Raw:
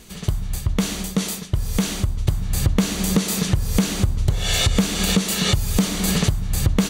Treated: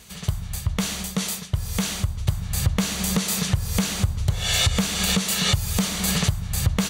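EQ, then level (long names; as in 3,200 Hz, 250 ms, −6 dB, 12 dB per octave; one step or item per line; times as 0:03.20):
high-pass filter 57 Hz
parametric band 310 Hz −11.5 dB 1.1 octaves
0.0 dB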